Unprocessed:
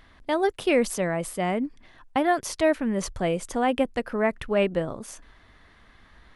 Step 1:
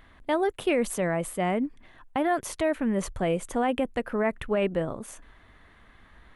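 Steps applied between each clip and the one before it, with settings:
parametric band 5,100 Hz −9.5 dB 0.69 octaves
brickwall limiter −16 dBFS, peak gain reduction 5.5 dB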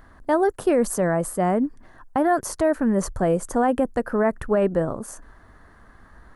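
flat-topped bell 2,800 Hz −13 dB 1.1 octaves
level +5.5 dB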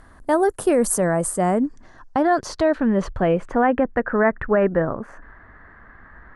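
low-pass filter sweep 10,000 Hz → 1,900 Hz, 0:01.11–0:03.89
level +1.5 dB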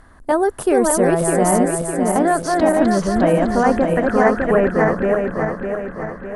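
feedback delay that plays each chunk backwards 303 ms, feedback 70%, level −2 dB
level +1 dB

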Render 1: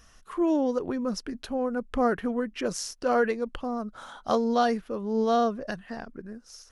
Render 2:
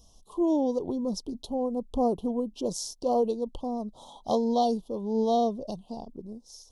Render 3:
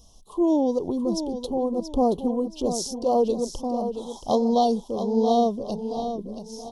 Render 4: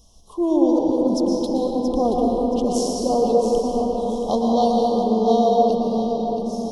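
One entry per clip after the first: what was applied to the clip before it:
elliptic band-stop filter 930–3,400 Hz, stop band 50 dB
repeating echo 677 ms, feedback 34%, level −9 dB; level +4 dB
convolution reverb RT60 3.9 s, pre-delay 108 ms, DRR −1.5 dB

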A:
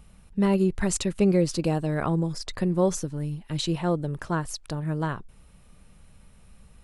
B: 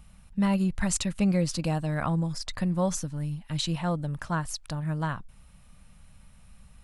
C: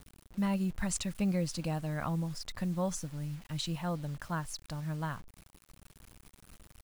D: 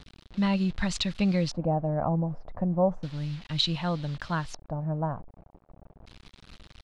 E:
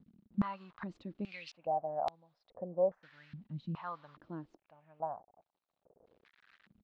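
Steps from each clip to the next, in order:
parametric band 390 Hz −15 dB 0.6 octaves
bit reduction 8 bits; level −6.5 dB
auto-filter low-pass square 0.33 Hz 710–4,000 Hz; level +5.5 dB
band-pass on a step sequencer 2.4 Hz 210–4,000 Hz; level −1 dB

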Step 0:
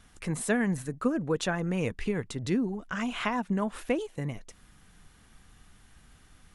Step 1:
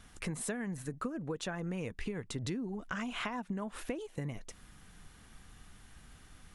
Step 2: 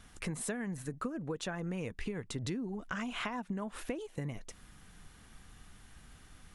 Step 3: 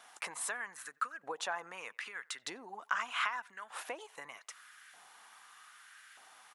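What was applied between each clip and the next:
downward compressor 12 to 1, threshold −35 dBFS, peak gain reduction 14.5 dB; level +1 dB
no processing that can be heard
auto-filter high-pass saw up 0.81 Hz 730–1,700 Hz; far-end echo of a speakerphone 90 ms, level −26 dB; level +1.5 dB

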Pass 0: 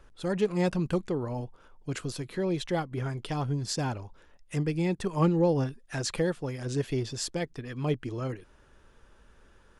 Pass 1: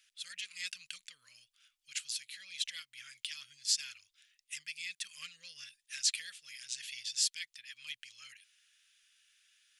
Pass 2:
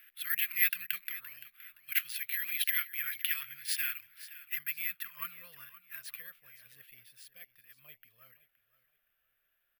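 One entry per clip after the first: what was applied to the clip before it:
inverse Chebyshev high-pass filter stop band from 920 Hz, stop band 50 dB; level +4 dB
low-pass filter sweep 1,900 Hz → 680 Hz, 0:04.09–0:06.87; repeating echo 519 ms, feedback 28%, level −16.5 dB; bad sample-rate conversion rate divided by 3×, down none, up zero stuff; level +8 dB

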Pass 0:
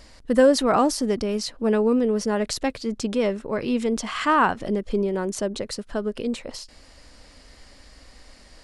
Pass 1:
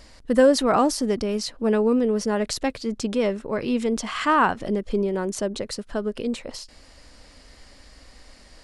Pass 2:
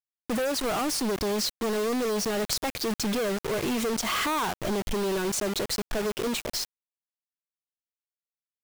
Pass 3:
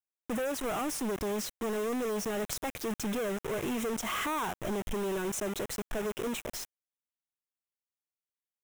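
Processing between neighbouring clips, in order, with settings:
no processing that can be heard
noise reduction from a noise print of the clip's start 7 dB; downward compressor 20 to 1, threshold −26 dBFS, peak gain reduction 14.5 dB; log-companded quantiser 2 bits; level −1 dB
parametric band 4,500 Hz −14 dB 0.4 octaves; level −5 dB

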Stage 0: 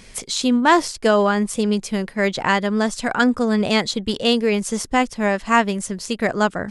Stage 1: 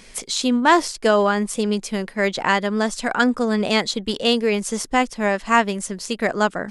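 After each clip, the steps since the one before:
parametric band 84 Hz −14 dB 1.2 octaves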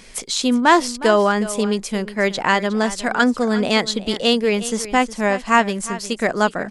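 single-tap delay 362 ms −15 dB
level +1.5 dB

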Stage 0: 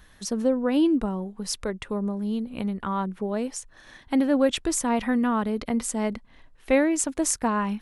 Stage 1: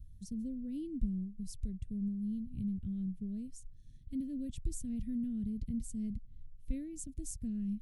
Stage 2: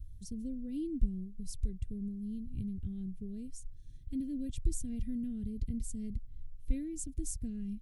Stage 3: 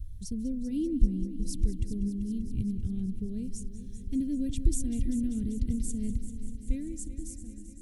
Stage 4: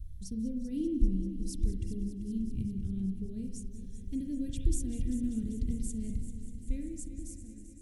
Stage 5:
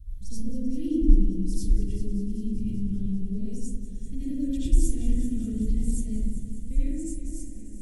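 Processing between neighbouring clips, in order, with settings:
Chebyshev band-stop filter 110–8,400 Hz, order 2; bass and treble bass +10 dB, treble −14 dB; level −4 dB
comb filter 2.5 ms, depth 48%; level +2.5 dB
fade-out on the ending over 1.77 s; on a send: echo machine with several playback heads 195 ms, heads first and second, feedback 69%, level −15.5 dB; on the sum: level +6.5 dB
on a send at −5 dB: convolution reverb, pre-delay 36 ms; on the sum: feedback echo with a swinging delay time 172 ms, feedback 64%, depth 139 cents, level −20.5 dB; level −4 dB
comb and all-pass reverb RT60 0.77 s, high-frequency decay 0.35×, pre-delay 45 ms, DRR −9.5 dB; level −4 dB

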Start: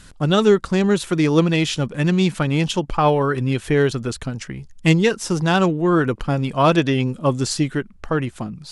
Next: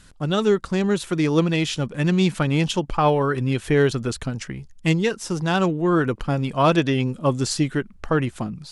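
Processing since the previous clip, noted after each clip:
automatic gain control gain up to 7 dB
level −5.5 dB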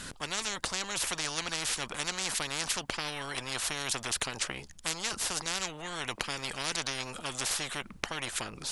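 every bin compressed towards the loudest bin 10 to 1
level −2 dB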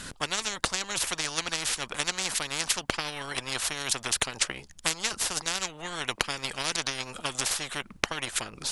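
transient designer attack +6 dB, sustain −4 dB
level +1.5 dB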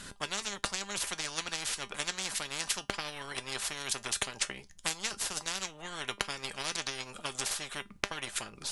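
tuned comb filter 200 Hz, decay 0.17 s, harmonics all, mix 60%

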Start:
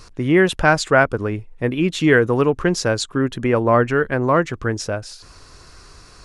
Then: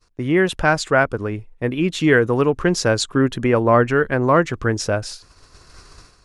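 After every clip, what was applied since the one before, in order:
downward expander −33 dBFS
automatic gain control gain up to 16 dB
level −2.5 dB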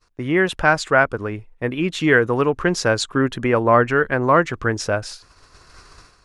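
parametric band 1,400 Hz +5 dB 2.6 octaves
level −3 dB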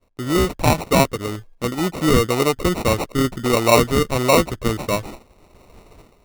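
decimation without filtering 27×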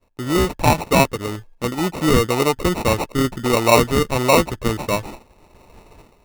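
hollow resonant body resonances 890/1,700/2,600 Hz, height 8 dB

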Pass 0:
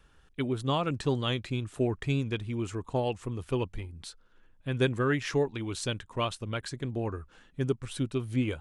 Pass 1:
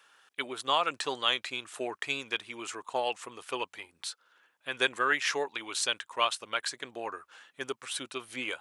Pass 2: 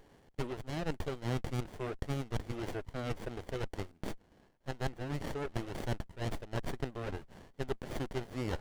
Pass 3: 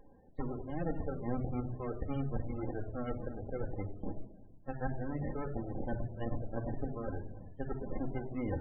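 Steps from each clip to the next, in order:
high-pass filter 850 Hz 12 dB per octave; level +6.5 dB
reversed playback; downward compressor 12 to 1, threshold −36 dBFS, peak gain reduction 16 dB; reversed playback; windowed peak hold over 33 samples; level +5 dB
hearing-aid frequency compression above 3,100 Hz 1.5 to 1; rectangular room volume 2,800 cubic metres, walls furnished, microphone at 2.1 metres; spectral peaks only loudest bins 32; level −1 dB

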